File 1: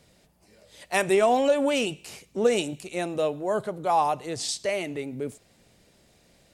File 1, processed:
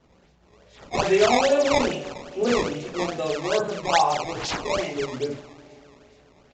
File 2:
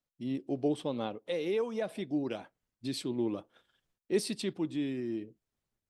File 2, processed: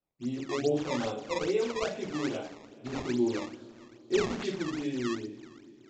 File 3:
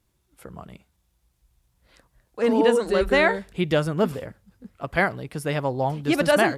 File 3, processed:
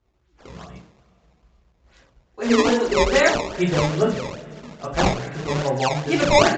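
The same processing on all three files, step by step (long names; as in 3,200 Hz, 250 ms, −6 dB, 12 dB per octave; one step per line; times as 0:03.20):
coupled-rooms reverb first 0.44 s, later 3.5 s, from −21 dB, DRR −7 dB
sample-and-hold swept by an LFO 17×, swing 160% 2.4 Hz
downsampling to 16,000 Hz
level −5 dB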